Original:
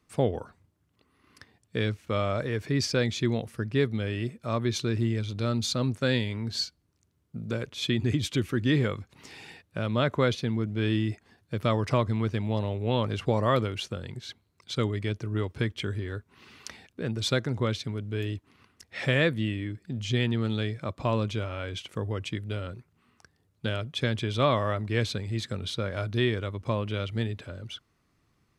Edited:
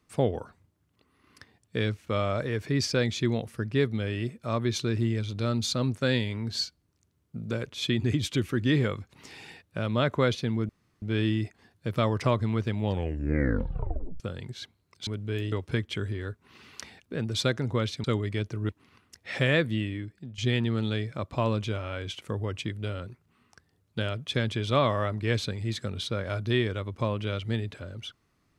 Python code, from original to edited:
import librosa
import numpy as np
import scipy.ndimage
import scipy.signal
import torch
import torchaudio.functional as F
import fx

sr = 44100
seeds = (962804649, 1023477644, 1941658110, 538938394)

y = fx.edit(x, sr, fx.insert_room_tone(at_s=10.69, length_s=0.33),
    fx.tape_stop(start_s=12.47, length_s=1.4),
    fx.swap(start_s=14.74, length_s=0.65, other_s=17.91, other_length_s=0.45),
    fx.fade_out_to(start_s=19.4, length_s=0.65, curve='qsin', floor_db=-14.0), tone=tone)